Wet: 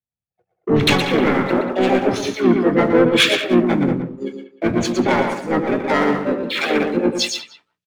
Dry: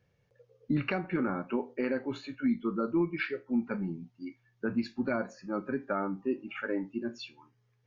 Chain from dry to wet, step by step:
leveller curve on the samples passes 2
on a send: single-tap delay 119 ms −5.5 dB
on the sum: pitch-shifted copies added −5 semitones −6 dB, +5 semitones −8 dB, +7 semitones 0 dB
in parallel at +2 dB: downward compressor, threshold −31 dBFS, peak gain reduction 14 dB
on the sum: far-end echo of a speakerphone 190 ms, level −7 dB
multiband upward and downward expander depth 100%
level +3 dB

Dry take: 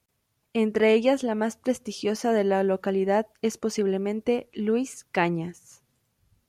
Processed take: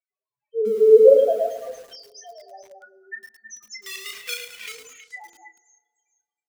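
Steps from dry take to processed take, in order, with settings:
meter weighting curve A
0:02.80–0:03.99: gain on a spectral selection 390–890 Hz −20 dB
0:01.87–0:02.86: dynamic equaliser 310 Hz, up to −7 dB, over −44 dBFS, Q 1.6
automatic gain control gain up to 15.5 dB
spectral peaks only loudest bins 1
0:03.86–0:04.72: log-companded quantiser 4 bits
double-tracking delay 33 ms −8 dB
echo through a band-pass that steps 107 ms, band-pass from 340 Hz, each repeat 1.4 octaves, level −3 dB
high-pass filter sweep 130 Hz → 2,300 Hz, 0:00.10–0:02.21
feedback delay network reverb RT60 1.8 s, low-frequency decay 1.45×, high-frequency decay 0.55×, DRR 19 dB
feedback echo at a low word length 107 ms, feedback 55%, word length 7 bits, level −8 dB

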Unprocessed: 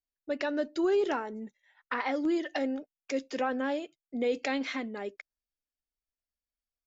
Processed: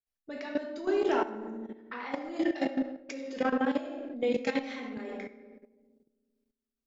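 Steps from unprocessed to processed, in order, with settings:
feedback echo with a low-pass in the loop 66 ms, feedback 82%, low-pass 1,200 Hz, level −11 dB
rectangular room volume 450 cubic metres, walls mixed, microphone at 1.6 metres
output level in coarse steps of 13 dB

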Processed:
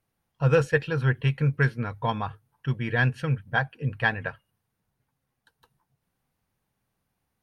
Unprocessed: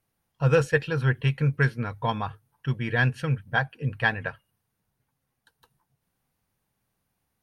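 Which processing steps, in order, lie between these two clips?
high-shelf EQ 4,700 Hz −4.5 dB

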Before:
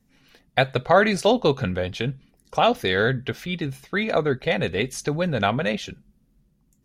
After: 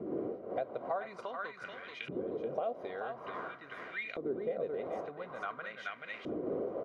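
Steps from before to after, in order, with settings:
wind on the microphone 530 Hz −26 dBFS
notch comb filter 860 Hz
on a send: repeating echo 431 ms, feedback 27%, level −5.5 dB
on the sum: downward compressor 6 to 1, threshold −31 dBFS, peak gain reduction 18.5 dB
auto-filter band-pass saw up 0.48 Hz 320–2,500 Hz
level +2 dB

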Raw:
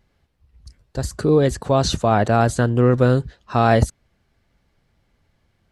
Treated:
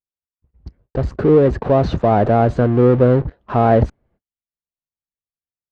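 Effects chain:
noise gate −55 dBFS, range −41 dB
parametric band 480 Hz +7.5 dB 2.6 octaves
in parallel at −4.5 dB: fuzz pedal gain 34 dB, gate −38 dBFS
on the sum: head-to-tape spacing loss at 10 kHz 42 dB
level −3 dB

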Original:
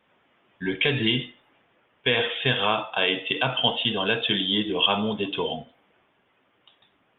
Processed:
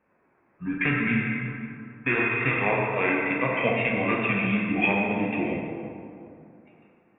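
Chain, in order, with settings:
formants moved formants −5 semitones
dense smooth reverb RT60 2.8 s, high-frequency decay 0.55×, DRR −1.5 dB
one half of a high-frequency compander decoder only
level −3.5 dB

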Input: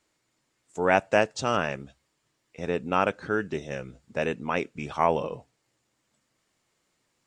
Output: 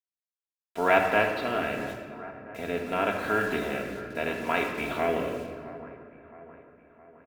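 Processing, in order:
compressor on every frequency bin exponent 0.6
downward expander −41 dBFS
Chebyshev low-pass filter 3,900 Hz, order 4
high-shelf EQ 2,200 Hz +5.5 dB
comb filter 3 ms, depth 48%
bit reduction 7 bits
rotating-speaker cabinet horn 0.8 Hz
echo with a time of its own for lows and highs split 1,900 Hz, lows 665 ms, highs 90 ms, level −16 dB
rectangular room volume 2,300 cubic metres, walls mixed, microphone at 1.7 metres
level −4.5 dB

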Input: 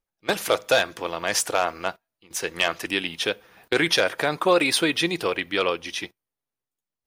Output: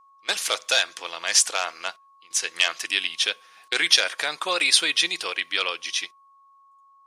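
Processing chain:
meter weighting curve ITU-R 468
steady tone 1,100 Hz −48 dBFS
level −5 dB

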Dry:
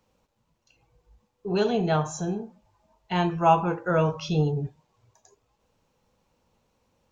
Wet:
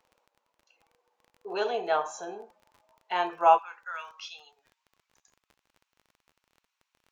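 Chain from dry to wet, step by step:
Bessel high-pass filter 680 Hz, order 4, from 0:03.57 2,100 Hz
surface crackle 26 per second −42 dBFS
high-shelf EQ 3,100 Hz −11.5 dB
level +3 dB

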